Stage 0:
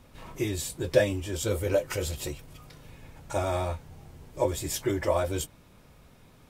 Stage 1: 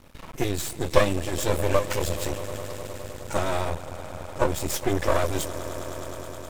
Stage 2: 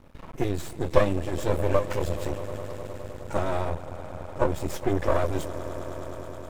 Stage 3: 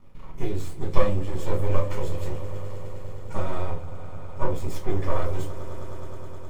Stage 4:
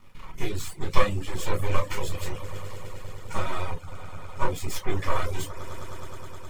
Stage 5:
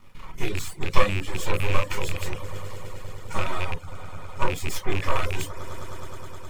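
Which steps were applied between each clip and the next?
echo with a slow build-up 104 ms, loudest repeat 5, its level -18 dB; half-wave rectifier; trim +7 dB
treble shelf 2.3 kHz -12 dB
reverberation RT60 0.30 s, pre-delay 5 ms, DRR -1 dB; trim -9 dB
reverb removal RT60 0.52 s; FFT filter 640 Hz 0 dB, 1 kHz +6 dB, 2.4 kHz +11 dB; trim -2 dB
rattle on loud lows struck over -30 dBFS, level -20 dBFS; trim +1.5 dB

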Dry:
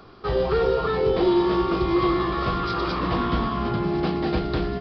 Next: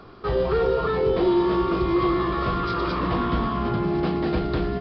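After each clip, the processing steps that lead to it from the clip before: treble shelf 4.7 kHz -9 dB; band-stop 790 Hz, Q 24; in parallel at -2.5 dB: peak limiter -22 dBFS, peak gain reduction 10 dB; on the sum: trim -2.5 dB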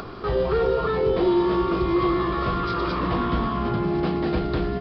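upward compressor, threshold -27 dBFS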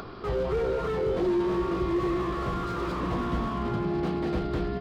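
slew-rate limiter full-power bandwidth 50 Hz; trim -4.5 dB

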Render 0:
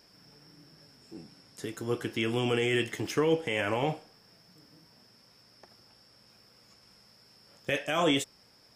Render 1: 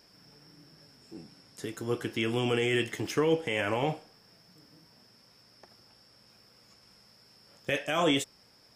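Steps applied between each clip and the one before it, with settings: no audible change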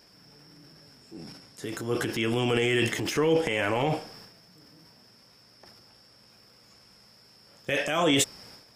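transient shaper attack -2 dB, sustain +10 dB; trim +2.5 dB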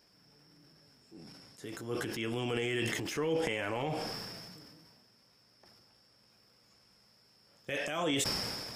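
decay stretcher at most 27 dB/s; trim -9 dB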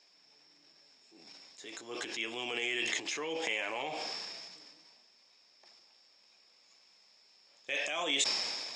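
cabinet simulation 460–7200 Hz, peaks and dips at 480 Hz -4 dB, 1.4 kHz -6 dB, 2.4 kHz +6 dB, 3.8 kHz +8 dB, 6.9 kHz +8 dB

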